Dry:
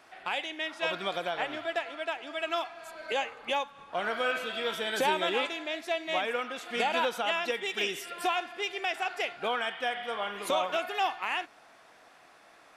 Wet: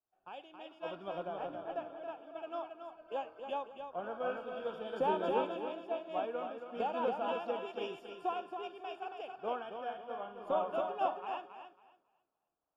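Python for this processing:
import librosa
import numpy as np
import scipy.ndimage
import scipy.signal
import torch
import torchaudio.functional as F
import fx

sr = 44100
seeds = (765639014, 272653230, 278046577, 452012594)

p1 = np.convolve(x, np.full(22, 1.0 / 22))[:len(x)]
p2 = p1 + fx.echo_feedback(p1, sr, ms=275, feedback_pct=44, wet_db=-4, dry=0)
p3 = fx.band_widen(p2, sr, depth_pct=100)
y = F.gain(torch.from_numpy(p3), -5.0).numpy()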